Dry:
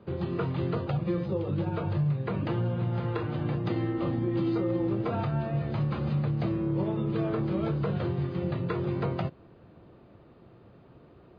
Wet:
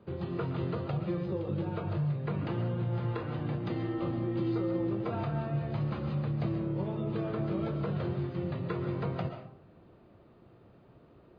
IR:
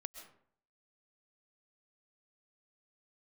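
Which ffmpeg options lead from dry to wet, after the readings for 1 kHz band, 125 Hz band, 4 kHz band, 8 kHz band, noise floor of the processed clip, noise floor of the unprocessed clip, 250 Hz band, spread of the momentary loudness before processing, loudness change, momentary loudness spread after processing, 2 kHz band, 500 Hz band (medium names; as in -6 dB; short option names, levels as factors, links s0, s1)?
-3.5 dB, -3.5 dB, -3.5 dB, no reading, -59 dBFS, -55 dBFS, -4.0 dB, 3 LU, -3.5 dB, 3 LU, -3.5 dB, -3.5 dB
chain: -filter_complex "[1:a]atrim=start_sample=2205[s0];[0:a][s0]afir=irnorm=-1:irlink=0"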